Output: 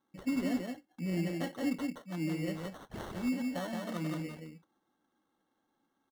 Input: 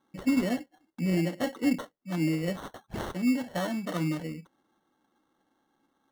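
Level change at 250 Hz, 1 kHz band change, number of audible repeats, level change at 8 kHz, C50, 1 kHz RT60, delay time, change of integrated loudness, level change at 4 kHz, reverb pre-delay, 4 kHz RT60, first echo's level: −6.0 dB, −6.0 dB, 1, −6.0 dB, no reverb audible, no reverb audible, 172 ms, −6.0 dB, −6.0 dB, no reverb audible, no reverb audible, −3.5 dB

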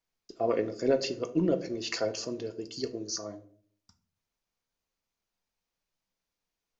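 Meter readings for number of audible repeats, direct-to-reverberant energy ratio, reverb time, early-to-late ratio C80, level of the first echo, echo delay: no echo audible, 7.5 dB, 0.50 s, 19.0 dB, no echo audible, no echo audible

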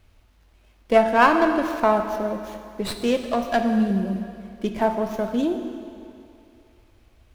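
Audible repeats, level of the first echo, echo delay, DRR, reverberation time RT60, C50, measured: no echo audible, no echo audible, no echo audible, 5.5 dB, 2.6 s, 6.5 dB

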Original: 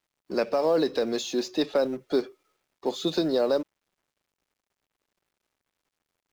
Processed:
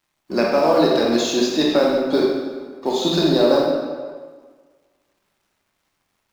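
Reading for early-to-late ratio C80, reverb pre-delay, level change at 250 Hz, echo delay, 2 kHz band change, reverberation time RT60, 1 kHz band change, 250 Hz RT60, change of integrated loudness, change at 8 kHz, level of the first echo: 3.0 dB, 23 ms, +10.0 dB, no echo audible, +10.5 dB, 1.6 s, +11.0 dB, 1.6 s, +8.5 dB, can't be measured, no echo audible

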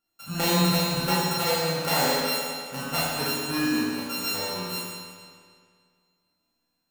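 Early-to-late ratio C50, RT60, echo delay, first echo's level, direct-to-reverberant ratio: −2.5 dB, 2.0 s, no echo audible, no echo audible, −8.5 dB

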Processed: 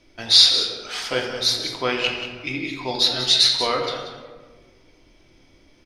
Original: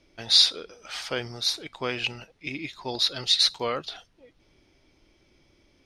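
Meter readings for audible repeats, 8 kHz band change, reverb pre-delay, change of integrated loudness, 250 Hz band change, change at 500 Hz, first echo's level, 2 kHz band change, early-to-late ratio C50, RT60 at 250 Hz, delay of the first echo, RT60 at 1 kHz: 1, +6.0 dB, 3 ms, +5.5 dB, +6.5 dB, +7.0 dB, −10.5 dB, +7.0 dB, 4.0 dB, 1.8 s, 185 ms, 1.3 s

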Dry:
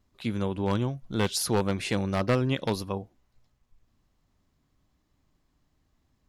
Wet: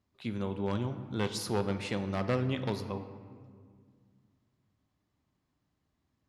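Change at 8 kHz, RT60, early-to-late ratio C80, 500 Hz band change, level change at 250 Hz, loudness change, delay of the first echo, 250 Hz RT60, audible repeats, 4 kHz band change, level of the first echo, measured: −10.0 dB, 2.0 s, 11.5 dB, −5.0 dB, −5.0 dB, −5.5 dB, no echo audible, 2.7 s, no echo audible, −7.0 dB, no echo audible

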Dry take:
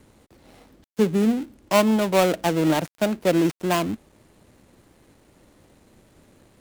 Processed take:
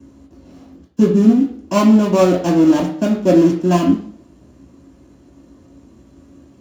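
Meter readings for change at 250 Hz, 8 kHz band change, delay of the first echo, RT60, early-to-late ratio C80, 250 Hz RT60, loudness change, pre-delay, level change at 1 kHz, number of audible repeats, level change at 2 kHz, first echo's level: +10.0 dB, +1.0 dB, no echo audible, 0.55 s, 10.0 dB, 0.60 s, +7.5 dB, 3 ms, +3.0 dB, no echo audible, −1.5 dB, no echo audible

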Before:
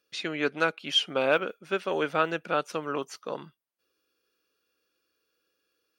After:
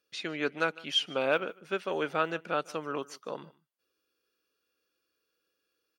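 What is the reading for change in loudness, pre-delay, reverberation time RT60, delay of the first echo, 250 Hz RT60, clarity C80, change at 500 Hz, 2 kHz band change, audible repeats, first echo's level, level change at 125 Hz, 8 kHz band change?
−3.5 dB, no reverb audible, no reverb audible, 151 ms, no reverb audible, no reverb audible, −3.5 dB, −3.5 dB, 1, −22.0 dB, −3.5 dB, −3.5 dB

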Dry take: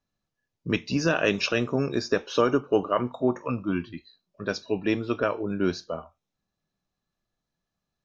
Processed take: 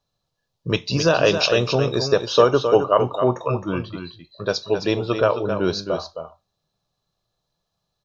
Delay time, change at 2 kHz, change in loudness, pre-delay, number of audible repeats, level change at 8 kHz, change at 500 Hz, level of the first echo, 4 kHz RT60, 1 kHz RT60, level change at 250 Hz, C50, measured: 265 ms, +3.0 dB, +6.5 dB, no reverb audible, 1, can't be measured, +8.0 dB, −8.0 dB, no reverb audible, no reverb audible, +1.5 dB, no reverb audible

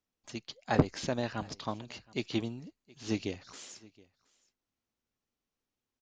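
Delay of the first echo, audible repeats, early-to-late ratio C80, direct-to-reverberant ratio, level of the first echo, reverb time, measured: 721 ms, 1, no reverb audible, no reverb audible, −24.0 dB, no reverb audible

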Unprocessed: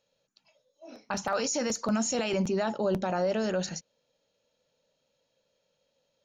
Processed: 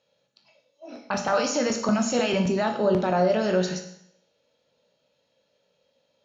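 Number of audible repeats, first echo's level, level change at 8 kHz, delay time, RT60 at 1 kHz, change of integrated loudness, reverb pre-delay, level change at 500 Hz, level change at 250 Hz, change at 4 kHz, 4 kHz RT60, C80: no echo audible, no echo audible, +0.5 dB, no echo audible, 0.70 s, +5.5 dB, 17 ms, +6.0 dB, +5.5 dB, +4.5 dB, 0.70 s, 11.0 dB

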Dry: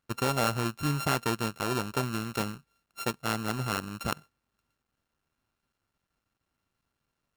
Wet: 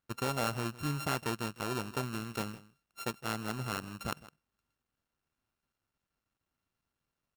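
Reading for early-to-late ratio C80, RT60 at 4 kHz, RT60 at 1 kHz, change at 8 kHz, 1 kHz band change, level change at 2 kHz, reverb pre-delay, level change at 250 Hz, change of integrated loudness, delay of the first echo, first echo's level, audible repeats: no reverb audible, no reverb audible, no reverb audible, −5.5 dB, −5.5 dB, −5.5 dB, no reverb audible, −5.5 dB, −5.5 dB, 160 ms, −18.0 dB, 1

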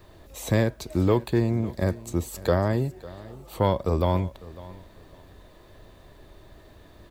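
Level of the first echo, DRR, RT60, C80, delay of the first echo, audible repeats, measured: −19.0 dB, no reverb audible, no reverb audible, no reverb audible, 551 ms, 2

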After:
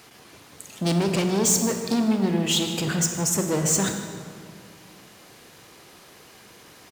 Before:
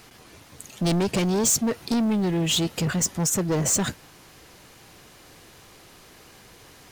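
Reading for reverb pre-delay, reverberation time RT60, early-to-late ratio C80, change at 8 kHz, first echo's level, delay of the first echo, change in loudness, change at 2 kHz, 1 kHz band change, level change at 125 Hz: 24 ms, 2.1 s, 7.0 dB, +1.0 dB, −16.0 dB, 155 ms, +0.5 dB, +1.0 dB, +1.0 dB, 0.0 dB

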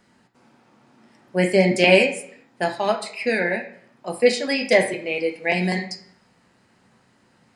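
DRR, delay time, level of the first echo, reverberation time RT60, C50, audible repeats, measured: 2.0 dB, no echo audible, no echo audible, 0.70 s, 9.5 dB, no echo audible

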